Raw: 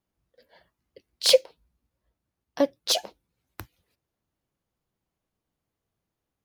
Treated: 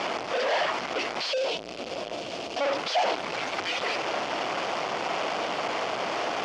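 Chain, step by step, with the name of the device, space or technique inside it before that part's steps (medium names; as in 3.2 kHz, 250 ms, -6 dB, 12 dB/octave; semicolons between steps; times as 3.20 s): home computer beeper (one-bit comparator; cabinet simulation 520–4500 Hz, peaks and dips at 690 Hz +5 dB, 1.7 kHz -4 dB, 3.9 kHz -9 dB); 1.32–2.61 s: high-order bell 1.3 kHz -9.5 dB; trim +9 dB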